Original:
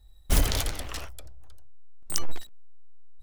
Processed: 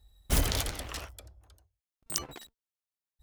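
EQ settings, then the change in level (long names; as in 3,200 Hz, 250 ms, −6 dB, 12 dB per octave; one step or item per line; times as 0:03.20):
high-pass filter 42 Hz
−2.0 dB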